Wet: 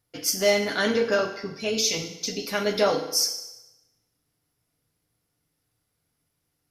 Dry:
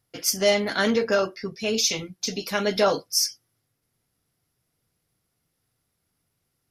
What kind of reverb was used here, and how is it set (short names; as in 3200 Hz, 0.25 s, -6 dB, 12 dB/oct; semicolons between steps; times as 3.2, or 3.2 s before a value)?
FDN reverb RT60 1 s, low-frequency decay 0.75×, high-frequency decay 0.9×, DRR 4.5 dB; gain -2 dB